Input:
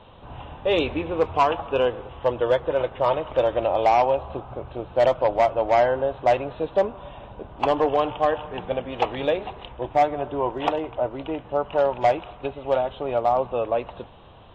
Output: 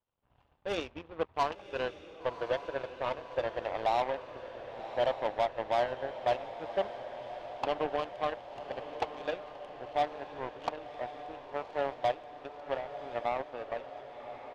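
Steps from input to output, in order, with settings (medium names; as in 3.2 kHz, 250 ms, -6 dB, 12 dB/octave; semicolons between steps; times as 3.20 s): resampled via 8 kHz; power-law waveshaper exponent 2; echo that smears into a reverb 1103 ms, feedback 65%, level -11 dB; trim -8.5 dB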